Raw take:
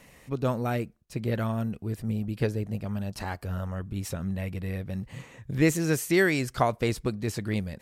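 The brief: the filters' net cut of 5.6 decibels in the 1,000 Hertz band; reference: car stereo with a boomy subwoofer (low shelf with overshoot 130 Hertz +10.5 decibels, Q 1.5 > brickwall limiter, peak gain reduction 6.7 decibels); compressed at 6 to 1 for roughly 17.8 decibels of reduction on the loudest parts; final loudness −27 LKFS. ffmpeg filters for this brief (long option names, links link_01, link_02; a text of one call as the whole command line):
ffmpeg -i in.wav -af "equalizer=frequency=1000:width_type=o:gain=-8,acompressor=threshold=-38dB:ratio=6,lowshelf=frequency=130:width_type=q:width=1.5:gain=10.5,volume=10.5dB,alimiter=limit=-18dB:level=0:latency=1" out.wav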